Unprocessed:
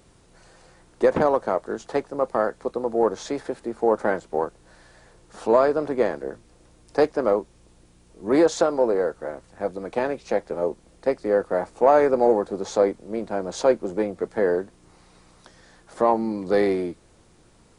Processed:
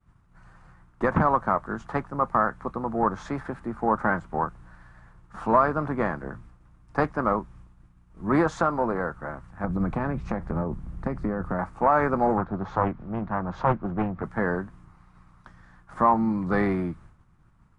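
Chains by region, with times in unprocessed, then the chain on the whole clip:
0:09.64–0:11.59: low-shelf EQ 400 Hz +12 dB + downward compressor 5 to 1, threshold −21 dBFS
0:12.37–0:14.23: high-frequency loss of the air 210 metres + upward compression, threshold −34 dBFS + highs frequency-modulated by the lows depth 0.36 ms
whole clip: downward expander −47 dBFS; drawn EQ curve 160 Hz 0 dB, 470 Hz −20 dB, 1,200 Hz −1 dB, 4,200 Hz −22 dB; boost into a limiter +17.5 dB; level −8 dB

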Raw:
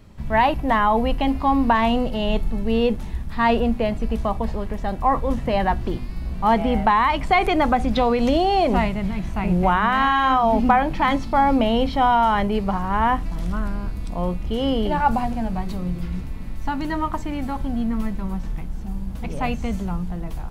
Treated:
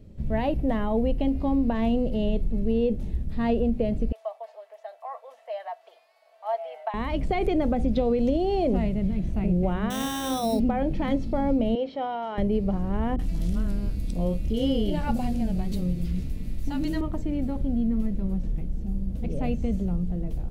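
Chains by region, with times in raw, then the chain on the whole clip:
0:04.12–0:06.94: Chebyshev high-pass filter 650 Hz, order 5 + high-shelf EQ 2,300 Hz −9.5 dB + comb filter 4.5 ms, depth 49%
0:09.90–0:10.60: high-pass filter 190 Hz 6 dB per octave + sample-rate reduction 4,700 Hz
0:11.75–0:12.38: high-pass filter 510 Hz + high-frequency loss of the air 120 metres
0:13.16–0:17.01: high-shelf EQ 2,200 Hz +12 dB + multiband delay without the direct sound lows, highs 30 ms, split 500 Hz
whole clip: drawn EQ curve 550 Hz 0 dB, 970 Hz −19 dB, 2,800 Hz −11 dB; downward compressor, threshold −19 dBFS

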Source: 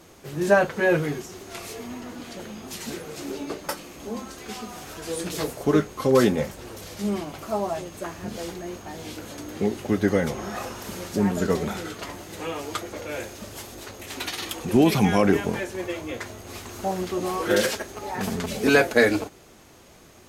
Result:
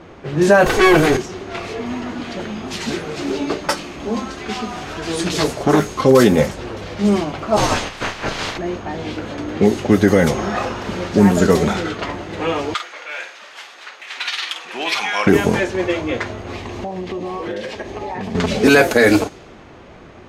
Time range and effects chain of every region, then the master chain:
0:00.66–0:01.17: lower of the sound and its delayed copy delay 2.6 ms + envelope flattener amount 50%
0:01.86–0:06.01: high-shelf EQ 4,500 Hz +7 dB + notch filter 500 Hz + saturating transformer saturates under 820 Hz
0:07.56–0:08.57: ceiling on every frequency bin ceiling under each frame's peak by 24 dB + frequency shifter −73 Hz + double-tracking delay 32 ms −12 dB
0:12.74–0:15.27: high-pass filter 1,400 Hz + double-tracking delay 49 ms −8.5 dB
0:16.55–0:18.35: parametric band 1,400 Hz −12.5 dB 0.27 octaves + downward compressor 10 to 1, threshold −33 dBFS
whole clip: low-pass that shuts in the quiet parts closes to 2,300 Hz, open at −17.5 dBFS; boost into a limiter +12 dB; level −1 dB

